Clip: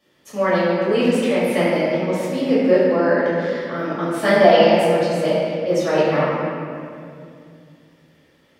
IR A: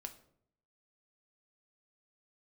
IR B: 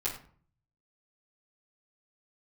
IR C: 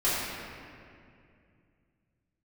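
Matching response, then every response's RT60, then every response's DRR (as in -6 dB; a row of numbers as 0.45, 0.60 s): C; 0.65, 0.50, 2.4 s; 5.5, -9.5, -12.5 dB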